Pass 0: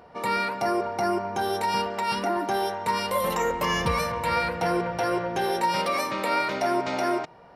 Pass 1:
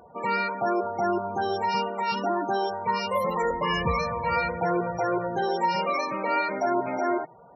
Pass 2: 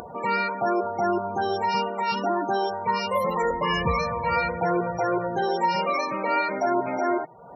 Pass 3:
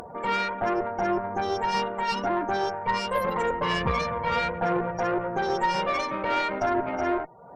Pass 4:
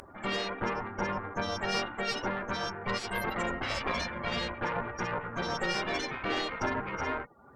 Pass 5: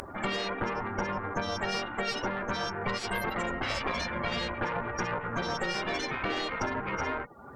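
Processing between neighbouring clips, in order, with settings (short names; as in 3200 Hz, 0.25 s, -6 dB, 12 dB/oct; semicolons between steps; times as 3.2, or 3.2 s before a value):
loudest bins only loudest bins 32
upward compressor, threshold -32 dBFS; gain +1.5 dB
tube stage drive 19 dB, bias 0.75; gain +2.5 dB
spectral gate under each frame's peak -10 dB weak; gain +1 dB
compressor 6:1, threshold -37 dBFS, peak gain reduction 11 dB; gain +8.5 dB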